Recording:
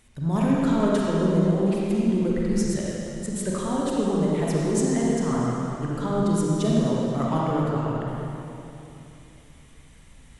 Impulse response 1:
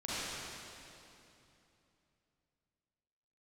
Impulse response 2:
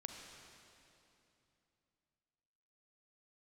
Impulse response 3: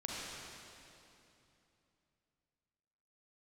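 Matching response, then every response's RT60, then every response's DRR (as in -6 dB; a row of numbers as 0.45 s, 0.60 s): 3; 2.9 s, 2.9 s, 2.9 s; -11.0 dB, 2.5 dB, -5.0 dB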